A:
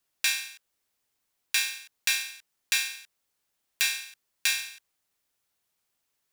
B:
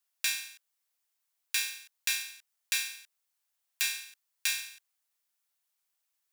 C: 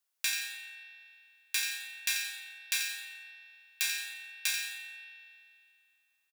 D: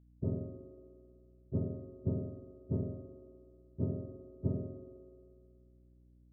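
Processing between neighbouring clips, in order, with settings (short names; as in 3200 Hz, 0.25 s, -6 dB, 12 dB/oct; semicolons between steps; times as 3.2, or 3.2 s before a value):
HPF 670 Hz 12 dB/oct; high shelf 6700 Hz +5 dB; gain -6 dB
on a send: feedback echo 87 ms, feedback 44%, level -8.5 dB; on the sum: spring tank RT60 2.4 s, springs 36 ms, chirp 45 ms, DRR 5 dB; gain -1.5 dB
spectrum mirrored in octaves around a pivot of 1000 Hz; hum 60 Hz, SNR 22 dB; gain -7.5 dB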